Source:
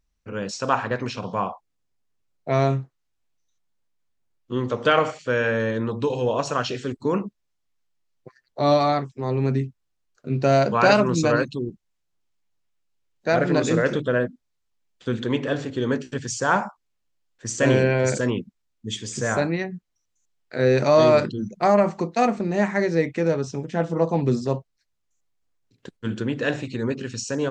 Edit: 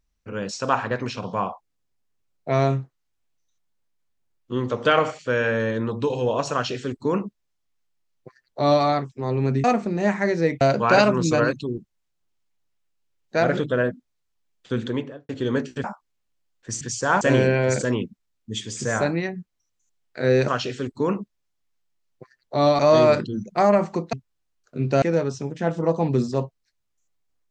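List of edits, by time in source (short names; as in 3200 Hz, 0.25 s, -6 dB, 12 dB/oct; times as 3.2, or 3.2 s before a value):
6.53–8.84 copy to 20.84
9.64–10.53 swap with 22.18–23.15
13.49–13.93 cut
15.16–15.65 studio fade out
16.2–16.6 move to 17.57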